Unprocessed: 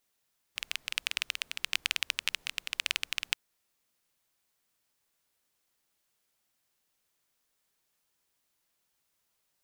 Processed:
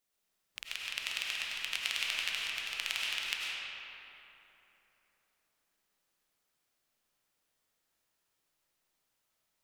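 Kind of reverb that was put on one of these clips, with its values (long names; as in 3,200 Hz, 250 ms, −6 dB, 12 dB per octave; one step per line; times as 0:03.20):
comb and all-pass reverb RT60 3.4 s, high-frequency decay 0.55×, pre-delay 60 ms, DRR −5 dB
level −6.5 dB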